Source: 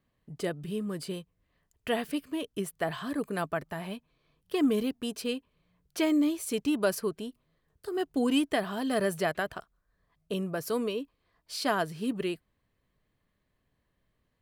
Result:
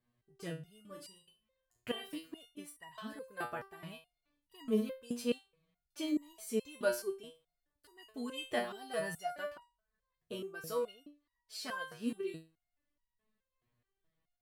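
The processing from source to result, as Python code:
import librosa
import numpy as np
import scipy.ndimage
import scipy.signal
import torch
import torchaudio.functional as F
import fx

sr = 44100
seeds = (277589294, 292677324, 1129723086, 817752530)

y = fx.room_flutter(x, sr, wall_m=6.2, rt60_s=0.33, at=(0.87, 2.09))
y = fx.resonator_held(y, sr, hz=4.7, low_hz=120.0, high_hz=950.0)
y = y * 10.0 ** (4.5 / 20.0)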